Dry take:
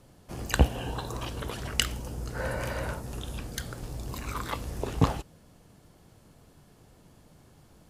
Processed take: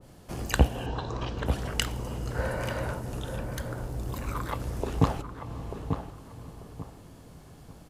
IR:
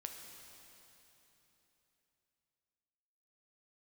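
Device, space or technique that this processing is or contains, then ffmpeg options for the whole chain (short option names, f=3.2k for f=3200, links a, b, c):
ducked reverb: -filter_complex "[0:a]asplit=3[a][b][c];[1:a]atrim=start_sample=2205[d];[b][d]afir=irnorm=-1:irlink=0[e];[c]apad=whole_len=348228[f];[e][f]sidechaincompress=threshold=-40dB:ratio=8:attack=16:release=328,volume=1dB[g];[a][g]amix=inputs=2:normalize=0,asettb=1/sr,asplit=3[h][i][j];[h]atrim=end=0.864[k];[i]atrim=start=0.86:end=1.46,asetpts=PTS-STARTPTS,afade=t=in:d=0.004:c=qsin,afade=t=out:st=0.596:d=0.004:c=qsin,lowpass=f=5.9k:w=0.5412,lowpass=f=5.9k:w=1.3066[l];[j]atrim=start=1.456[m];[k][l]acrossfade=d=0.004:c1=hsin:c2=qsin[n];[n][m]acrossfade=d=0.004:c1=qsin:c2=hsin,asettb=1/sr,asplit=3[o][p][q];[o]atrim=end=3.364[r];[p]atrim=start=3.36:end=4.6,asetpts=PTS-STARTPTS,afade=t=in:d=0.004:c=qsin,afade=t=out:st=1.236:d=0.004:c=qsin,equalizer=f=4.5k:w=0.55:g=-5[s];[q]atrim=start=4.596[t];[r][s]acrossfade=d=0.004:c1=hsin:c2=qsin[u];[u][t]acrossfade=d=0.004:c1=qsin:c2=hsin,asplit=2[v][w];[w]adelay=890,lowpass=f=1.4k:p=1,volume=-7dB,asplit=2[x][y];[y]adelay=890,lowpass=f=1.4k:p=1,volume=0.29,asplit=2[z][aa];[aa]adelay=890,lowpass=f=1.4k:p=1,volume=0.29,asplit=2[ab][ac];[ac]adelay=890,lowpass=f=1.4k:p=1,volume=0.29[ad];[v][x][z][ab][ad]amix=inputs=5:normalize=0,adynamicequalizer=threshold=0.00447:dfrequency=1600:dqfactor=0.7:tfrequency=1600:tqfactor=0.7:attack=5:release=100:ratio=0.375:range=2:mode=cutabove:tftype=highshelf"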